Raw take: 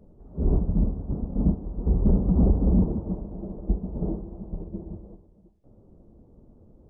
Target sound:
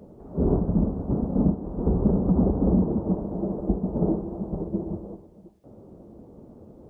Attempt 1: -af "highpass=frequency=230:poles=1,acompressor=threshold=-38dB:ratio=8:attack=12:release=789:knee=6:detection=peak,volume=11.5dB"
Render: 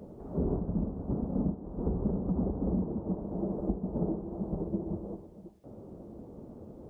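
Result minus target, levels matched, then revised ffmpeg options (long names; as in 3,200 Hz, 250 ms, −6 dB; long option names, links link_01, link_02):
downward compressor: peak gain reduction +9.5 dB
-af "highpass=frequency=230:poles=1,acompressor=threshold=-27dB:ratio=8:attack=12:release=789:knee=6:detection=peak,volume=11.5dB"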